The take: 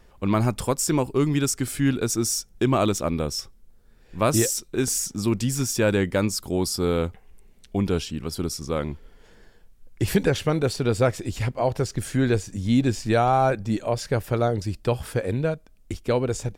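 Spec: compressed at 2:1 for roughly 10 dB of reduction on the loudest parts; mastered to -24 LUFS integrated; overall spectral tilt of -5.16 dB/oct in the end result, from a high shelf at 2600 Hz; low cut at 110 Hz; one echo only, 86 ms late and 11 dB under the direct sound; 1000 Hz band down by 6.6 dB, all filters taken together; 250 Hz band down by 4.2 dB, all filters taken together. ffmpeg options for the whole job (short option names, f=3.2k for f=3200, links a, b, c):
-af "highpass=110,equalizer=f=250:t=o:g=-4.5,equalizer=f=1k:t=o:g=-8.5,highshelf=f=2.6k:g=-6,acompressor=threshold=-38dB:ratio=2,aecho=1:1:86:0.282,volume=12dB"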